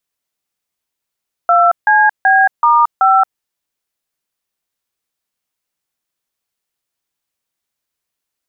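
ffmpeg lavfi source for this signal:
-f lavfi -i "aevalsrc='0.335*clip(min(mod(t,0.38),0.225-mod(t,0.38))/0.002,0,1)*(eq(floor(t/0.38),0)*(sin(2*PI*697*mod(t,0.38))+sin(2*PI*1336*mod(t,0.38)))+eq(floor(t/0.38),1)*(sin(2*PI*852*mod(t,0.38))+sin(2*PI*1633*mod(t,0.38)))+eq(floor(t/0.38),2)*(sin(2*PI*770*mod(t,0.38))+sin(2*PI*1633*mod(t,0.38)))+eq(floor(t/0.38),3)*(sin(2*PI*941*mod(t,0.38))+sin(2*PI*1209*mod(t,0.38)))+eq(floor(t/0.38),4)*(sin(2*PI*770*mod(t,0.38))+sin(2*PI*1336*mod(t,0.38))))':d=1.9:s=44100"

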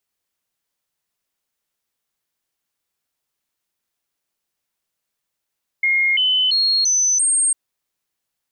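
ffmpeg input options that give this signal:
-f lavfi -i "aevalsrc='0.2*clip(min(mod(t,0.34),0.34-mod(t,0.34))/0.005,0,1)*sin(2*PI*2140*pow(2,floor(t/0.34)/2)*mod(t,0.34))':d=1.7:s=44100"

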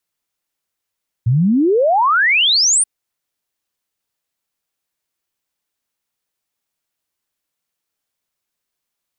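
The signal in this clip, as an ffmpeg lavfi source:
-f lavfi -i "aevalsrc='0.299*clip(min(t,1.58-t)/0.01,0,1)*sin(2*PI*110*1.58/log(9600/110)*(exp(log(9600/110)*t/1.58)-1))':d=1.58:s=44100"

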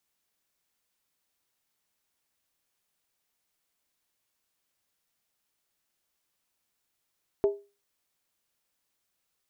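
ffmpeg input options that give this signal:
-f lavfi -i "aevalsrc='0.141*pow(10,-3*t/0.3)*sin(2*PI*404*t)+0.0398*pow(10,-3*t/0.238)*sin(2*PI*644*t)+0.0112*pow(10,-3*t/0.205)*sin(2*PI*862.9*t)+0.00316*pow(10,-3*t/0.198)*sin(2*PI*927.6*t)+0.000891*pow(10,-3*t/0.184)*sin(2*PI*1071.8*t)':d=0.63:s=44100"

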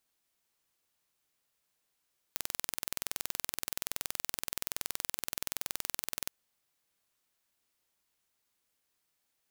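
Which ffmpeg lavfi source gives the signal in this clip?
-f lavfi -i "aevalsrc='0.501*eq(mod(n,2080),0)':d=3.95:s=44100"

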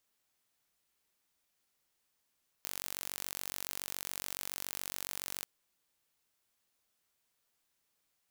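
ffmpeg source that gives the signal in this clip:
-f lavfi -i "aevalsrc='0.251*eq(mod(n,936),0)':d=2.8:s=44100"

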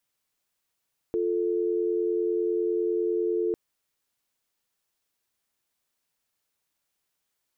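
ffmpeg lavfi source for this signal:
-f lavfi -i "aevalsrc='0.0501*(sin(2*PI*350*t)+sin(2*PI*440*t))':d=2.4:s=44100"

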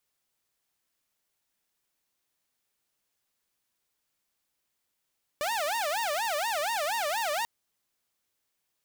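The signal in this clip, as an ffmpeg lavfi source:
-f lavfi -i "aevalsrc='0.0562*(2*mod((758*t-177/(2*PI*4.2)*sin(2*PI*4.2*t)),1)-1)':d=2.04:s=44100"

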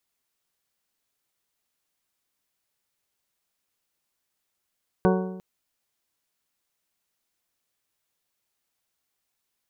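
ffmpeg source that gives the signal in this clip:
-f lavfi -i "aevalsrc='0.126*pow(10,-3*t/0.99)*sin(2*PI*186*t)+0.1*pow(10,-3*t/0.804)*sin(2*PI*372*t)+0.0794*pow(10,-3*t/0.761)*sin(2*PI*446.4*t)+0.0631*pow(10,-3*t/0.712)*sin(2*PI*558*t)+0.0501*pow(10,-3*t/0.653)*sin(2*PI*744*t)+0.0398*pow(10,-3*t/0.611)*sin(2*PI*930*t)+0.0316*pow(10,-3*t/0.578)*sin(2*PI*1116*t)+0.0251*pow(10,-3*t/0.531)*sin(2*PI*1488*t)':d=0.35:s=44100"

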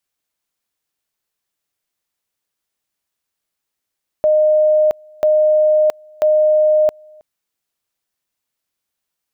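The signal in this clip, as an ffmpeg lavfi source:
-f lavfi -i "aevalsrc='pow(10,(-9.5-30*gte(mod(t,0.99),0.67))/20)*sin(2*PI*614*t)':d=2.97:s=44100"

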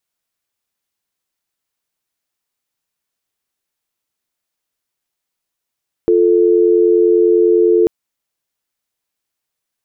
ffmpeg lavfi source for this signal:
-f lavfi -i "aevalsrc='0.282*(sin(2*PI*350*t)+sin(2*PI*440*t))':d=1.79:s=44100"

